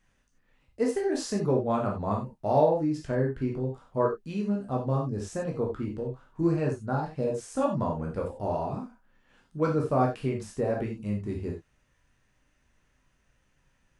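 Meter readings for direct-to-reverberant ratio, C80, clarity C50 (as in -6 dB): -1.5 dB, 13.5 dB, 7.0 dB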